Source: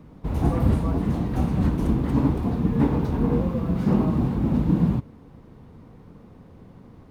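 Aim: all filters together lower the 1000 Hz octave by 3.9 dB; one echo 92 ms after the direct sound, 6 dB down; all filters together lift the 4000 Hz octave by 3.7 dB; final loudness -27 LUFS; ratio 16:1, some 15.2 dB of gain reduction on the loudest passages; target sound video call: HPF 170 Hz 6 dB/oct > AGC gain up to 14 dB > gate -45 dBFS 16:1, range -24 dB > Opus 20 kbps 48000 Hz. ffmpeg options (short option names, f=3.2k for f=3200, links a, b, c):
-af "equalizer=f=1k:t=o:g=-5,equalizer=f=4k:t=o:g=5,acompressor=threshold=-31dB:ratio=16,highpass=f=170:p=1,aecho=1:1:92:0.501,dynaudnorm=m=14dB,agate=range=-24dB:threshold=-45dB:ratio=16,volume=12dB" -ar 48000 -c:a libopus -b:a 20k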